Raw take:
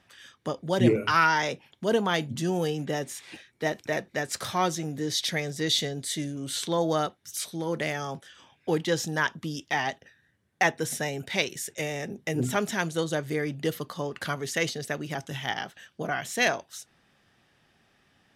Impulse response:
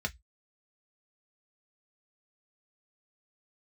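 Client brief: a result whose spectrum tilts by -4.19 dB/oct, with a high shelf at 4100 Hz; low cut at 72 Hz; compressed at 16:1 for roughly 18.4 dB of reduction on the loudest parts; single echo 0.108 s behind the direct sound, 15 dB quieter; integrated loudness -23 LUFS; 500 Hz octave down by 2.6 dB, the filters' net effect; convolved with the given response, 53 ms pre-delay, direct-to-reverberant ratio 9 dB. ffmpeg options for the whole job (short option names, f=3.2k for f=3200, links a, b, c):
-filter_complex "[0:a]highpass=72,equalizer=f=500:t=o:g=-3,highshelf=f=4.1k:g=-7,acompressor=threshold=-34dB:ratio=16,aecho=1:1:108:0.178,asplit=2[a][b];[1:a]atrim=start_sample=2205,adelay=53[c];[b][c]afir=irnorm=-1:irlink=0,volume=-13dB[d];[a][d]amix=inputs=2:normalize=0,volume=16dB"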